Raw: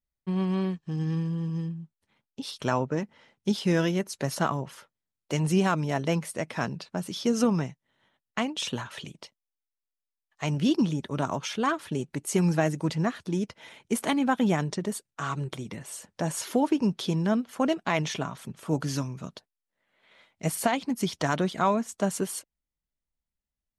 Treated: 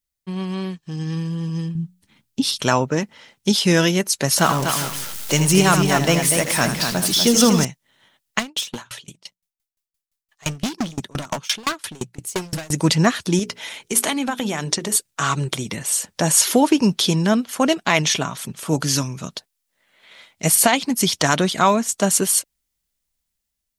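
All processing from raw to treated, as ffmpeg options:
-filter_complex "[0:a]asettb=1/sr,asplit=3[s0][s1][s2];[s0]atrim=end=1.754[s3];[s1]atrim=start=1.75:end=2.61,asetpts=PTS-STARTPTS,afade=t=in:d=0.004:c=qsin,afade=t=out:st=0.856:d=0.004:c=qsin,lowshelf=f=370:t=q:w=1.5:g=7.5,bandreject=f=60:t=h:w=6,bandreject=f=120:t=h:w=6,bandreject=f=180:t=h:w=6[s4];[s2]atrim=start=2.606[s5];[s3][s4]acrossfade=d=0.004:c1=hsin:c2=qsin[s6];[s6][s5]acrossfade=d=0.004:c1=qsin:c2=hsin,asettb=1/sr,asplit=3[s7][s8][s9];[s7]atrim=end=4.384[s10];[s8]atrim=start=4.38:end=7.65,asetpts=PTS-STARTPTS,afade=t=in:d=0.004:c=qsin,afade=t=out:st=3.266:d=0.004:c=qsin,aeval=exprs='val(0)+0.5*0.0141*sgn(val(0))':c=same,aecho=1:1:80|244|401:0.335|0.473|0.141,atrim=end_sample=144207[s11];[s9]atrim=start=7.646[s12];[s10][s11]acrossfade=d=0.004:c1=hsin:c2=qsin[s13];[s13][s12]acrossfade=d=0.004:c1=qsin:c2=hsin,asettb=1/sr,asplit=3[s14][s15][s16];[s14]atrim=end=8.394[s17];[s15]atrim=start=8.39:end=12.72,asetpts=PTS-STARTPTS,afade=t=in:d=0.004:c=qsin,afade=t=out:st=4.326:d=0.004:c=qsin,bandreject=f=60:t=h:w=6,bandreject=f=120:t=h:w=6,bandreject=f=180:t=h:w=6,asoftclip=type=hard:threshold=0.0376,aeval=exprs='val(0)*pow(10,-28*if(lt(mod(5.8*n/s,1),2*abs(5.8)/1000),1-mod(5.8*n/s,1)/(2*abs(5.8)/1000),(mod(5.8*n/s,1)-2*abs(5.8)/1000)/(1-2*abs(5.8)/1000))/20)':c=same[s18];[s16]atrim=start=12.716[s19];[s17][s18]acrossfade=d=0.004:c1=hsin:c2=qsin[s20];[s20][s19]acrossfade=d=0.004:c1=qsin:c2=hsin,asettb=1/sr,asplit=3[s21][s22][s23];[s21]atrim=end=13.394[s24];[s22]atrim=start=13.39:end=14.96,asetpts=PTS-STARTPTS,afade=t=in:d=0.004:c=qsin,afade=t=out:st=1.566:d=0.004:c=qsin,equalizer=f=64:w=0.39:g=-7,acompressor=threshold=0.0398:ratio=10:attack=3.2:release=140:knee=1:detection=peak,bandreject=f=60:t=h:w=6,bandreject=f=120:t=h:w=6,bandreject=f=180:t=h:w=6,bandreject=f=240:t=h:w=6,bandreject=f=300:t=h:w=6,bandreject=f=360:t=h:w=6,bandreject=f=420:t=h:w=6,bandreject=f=480:t=h:w=6[s25];[s23]atrim=start=14.956[s26];[s24][s25]acrossfade=d=0.004:c1=hsin:c2=qsin[s27];[s27][s26]acrossfade=d=0.004:c1=qsin:c2=hsin,highshelf=f=2500:g=12,dynaudnorm=f=540:g=5:m=3.76"

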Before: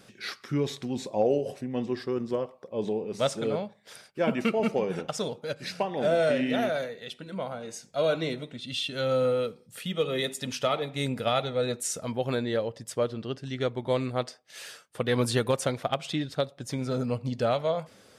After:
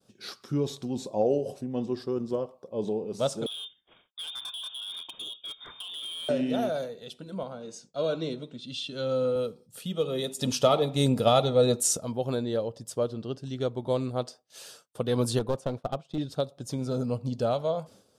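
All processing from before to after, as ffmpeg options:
-filter_complex "[0:a]asettb=1/sr,asplit=3[s0][s1][s2];[s0]atrim=end=3.464[s3];[s1]atrim=start=3.46:end=6.29,asetpts=PTS-STARTPTS,afade=t=in:d=0.004:c=qsin,afade=t=out:st=2.826:d=0.004:c=qsin,acompressor=threshold=0.0398:ratio=10:attack=3.2:release=140:knee=1:detection=peak,lowpass=f=3200:t=q:w=0.5098,lowpass=f=3200:t=q:w=0.6013,lowpass=f=3200:t=q:w=0.9,lowpass=f=3200:t=q:w=2.563,afreqshift=-3800,asoftclip=type=hard:threshold=0.0335[s4];[s2]atrim=start=6.286[s5];[s3][s4]acrossfade=d=0.004:c1=hsin:c2=qsin[s6];[s6][s5]acrossfade=d=0.004:c1=qsin:c2=hsin,asettb=1/sr,asplit=3[s7][s8][s9];[s7]atrim=end=7.434[s10];[s8]atrim=start=7.43:end=9.36,asetpts=PTS-STARTPTS,afade=t=in:d=0.004:c=qsin,afade=t=out:st=1.926:d=0.004:c=qsin,highpass=130,lowpass=6600,equalizer=f=730:w=2.6:g=-5.5[s11];[s9]atrim=start=9.356[s12];[s10][s11]acrossfade=d=0.004:c1=hsin:c2=qsin[s13];[s13][s12]acrossfade=d=0.004:c1=qsin:c2=hsin,asettb=1/sr,asplit=3[s14][s15][s16];[s14]atrim=end=10.394[s17];[s15]atrim=start=10.39:end=11.97,asetpts=PTS-STARTPTS,afade=t=in:d=0.004:c=qsin,afade=t=out:st=1.576:d=0.004:c=qsin,bandreject=f=1500:w=14,acontrast=79[s18];[s16]atrim=start=11.966[s19];[s17][s18]acrossfade=d=0.004:c1=hsin:c2=qsin[s20];[s20][s19]acrossfade=d=0.004:c1=qsin:c2=hsin,asettb=1/sr,asplit=3[s21][s22][s23];[s21]atrim=end=15.394[s24];[s22]atrim=start=15.39:end=16.18,asetpts=PTS-STARTPTS,afade=t=in:d=0.004:c=qsin,afade=t=out:st=0.786:d=0.004:c=qsin,lowpass=f=1900:p=1,aeval=exprs='clip(val(0),-1,0.0299)':c=same,agate=range=0.0224:threshold=0.0158:ratio=3:release=100:detection=peak[s25];[s23]atrim=start=16.176[s26];[s24][s25]acrossfade=d=0.004:c1=hsin:c2=qsin[s27];[s27][s26]acrossfade=d=0.004:c1=qsin:c2=hsin,agate=range=0.0224:threshold=0.00398:ratio=3:detection=peak,equalizer=f=2000:t=o:w=0.87:g=-14.5"

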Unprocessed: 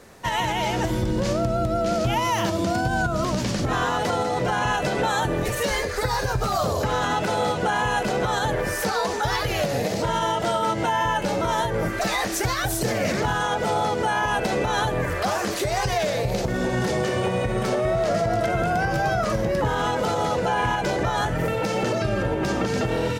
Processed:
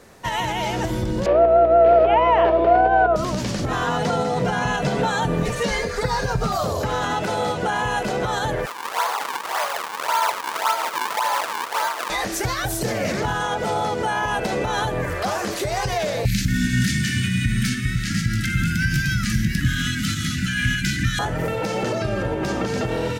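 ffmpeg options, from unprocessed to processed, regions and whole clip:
-filter_complex "[0:a]asettb=1/sr,asplit=3[s0][s1][s2];[s0]atrim=end=1.264[s3];[s1]atrim=start=1.26:end=3.16,asetpts=PTS-STARTPTS,afade=t=in:d=0.004:c=qsin,afade=t=out:st=1.896:d=0.004:c=qsin,highpass=f=390:w=0.5412,highpass=f=390:w=1.3066,equalizer=f=430:t=q:w=4:g=10,equalizer=f=700:t=q:w=4:g=7,equalizer=f=1400:t=q:w=4:g=-3,equalizer=f=2000:t=q:w=4:g=-3,lowpass=f=2400:w=0.5412,lowpass=f=2400:w=1.3066,aeval=exprs='val(0)+0.0141*(sin(2*PI*60*n/s)+sin(2*PI*2*60*n/s)/2+sin(2*PI*3*60*n/s)/3+sin(2*PI*4*60*n/s)/4+sin(2*PI*5*60*n/s)/5)':c=same,acontrast=45[s4];[s2]atrim=start=3.156[s5];[s3][s4]acrossfade=d=0.004:c1=hsin:c2=qsin[s6];[s6][s5]acrossfade=d=0.004:c1=qsin:c2=hsin,asettb=1/sr,asplit=3[s7][s8][s9];[s7]atrim=end=3.864[s10];[s8]atrim=start=3.86:end=6.52,asetpts=PTS-STARTPTS,afade=t=in:d=0.004:c=qsin,afade=t=out:st=2.656:d=0.004:c=qsin,acrossover=split=8900[s11][s12];[s12]acompressor=threshold=0.002:ratio=4:attack=1:release=60[s13];[s11][s13]amix=inputs=2:normalize=0,equalizer=f=150:t=o:w=0.58:g=10.5,aecho=1:1:4.3:0.4,atrim=end_sample=117306[s14];[s9]atrim=start=6.516[s15];[s10][s14]acrossfade=d=0.004:c1=hsin:c2=qsin[s16];[s16][s15]acrossfade=d=0.004:c1=qsin:c2=hsin,asettb=1/sr,asplit=3[s17][s18][s19];[s17]atrim=end=8.664[s20];[s18]atrim=start=8.66:end=12.1,asetpts=PTS-STARTPTS,afade=t=in:d=0.004:c=qsin,afade=t=out:st=3.436:d=0.004:c=qsin,aecho=1:1:247:0.596,atrim=end_sample=151704,acrusher=samples=39:mix=1:aa=0.000001:lfo=1:lforange=62.4:lforate=1.8,highpass=f=980:t=q:w=2.2[s21];[s19]atrim=start=12.096[s22];[s20][s21]acrossfade=d=0.004:c1=hsin:c2=qsin[s23];[s23][s22]acrossfade=d=0.004:c1=qsin:c2=hsin,asettb=1/sr,asplit=3[s24][s25][s26];[s24]atrim=end=16.254[s27];[s25]atrim=start=16.25:end=21.19,asetpts=PTS-STARTPTS,afade=t=in:d=0.004:c=qsin,afade=t=out:st=4.936:d=0.004:c=qsin,asuperstop=centerf=650:order=12:qfactor=0.51,acontrast=73,highshelf=f=10000:g=6[s28];[s26]atrim=start=21.186[s29];[s27][s28]acrossfade=d=0.004:c1=hsin:c2=qsin[s30];[s30][s29]acrossfade=d=0.004:c1=qsin:c2=hsin"

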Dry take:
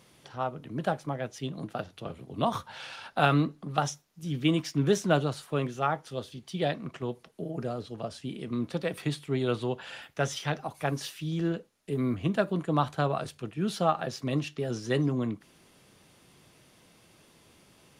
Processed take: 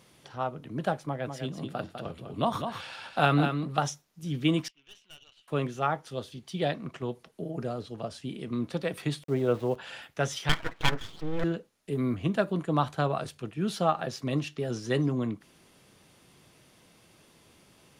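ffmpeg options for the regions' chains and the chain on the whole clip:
-filter_complex "[0:a]asettb=1/sr,asplit=3[s0][s1][s2];[s0]atrim=end=1.054[s3];[s1]atrim=start=1.05:end=3.79,asetpts=PTS-STARTPTS,afade=t=in:d=0.004:c=qsin,afade=t=out:st=2.736:d=0.004:c=qsin,bandreject=f=6100:w=11,aecho=1:1:201:0.447,atrim=end_sample=120834[s4];[s2]atrim=start=3.786[s5];[s3][s4]acrossfade=d=0.004:c1=hsin:c2=qsin[s6];[s6][s5]acrossfade=d=0.004:c1=qsin:c2=hsin,asettb=1/sr,asplit=3[s7][s8][s9];[s7]atrim=end=4.684[s10];[s8]atrim=start=4.68:end=5.48,asetpts=PTS-STARTPTS,afade=t=in:d=0.004:c=qsin,afade=t=out:st=0.796:d=0.004:c=qsin,bandpass=f=2900:t=q:w=8,aeval=exprs='(tanh(178*val(0)+0.75)-tanh(0.75))/178':c=same[s11];[s9]atrim=start=5.476[s12];[s10][s11]acrossfade=d=0.004:c1=hsin:c2=qsin[s13];[s13][s12]acrossfade=d=0.004:c1=qsin:c2=hsin,asettb=1/sr,asplit=3[s14][s15][s16];[s14]atrim=end=9.234[s17];[s15]atrim=start=9.23:end=9.76,asetpts=PTS-STARTPTS,afade=t=in:d=0.004:c=qsin,afade=t=out:st=0.526:d=0.004:c=qsin,lowpass=1900,aeval=exprs='val(0)*gte(abs(val(0)),0.00531)':c=same,equalizer=f=540:t=o:w=0.54:g=6.5[s18];[s16]atrim=start=9.756[s19];[s17][s18]acrossfade=d=0.004:c1=hsin:c2=qsin[s20];[s20][s19]acrossfade=d=0.004:c1=qsin:c2=hsin,asettb=1/sr,asplit=3[s21][s22][s23];[s21]atrim=end=10.494[s24];[s22]atrim=start=10.49:end=11.44,asetpts=PTS-STARTPTS,afade=t=in:d=0.004:c=qsin,afade=t=out:st=0.946:d=0.004:c=qsin,lowpass=f=1600:t=q:w=6.7,aecho=1:1:6.1:0.51,atrim=end_sample=41895,aeval=exprs='abs(val(0))':c=same[s25];[s23]atrim=start=11.436[s26];[s24][s25]acrossfade=d=0.004:c1=hsin:c2=qsin[s27];[s27][s26]acrossfade=d=0.004:c1=qsin:c2=hsin"

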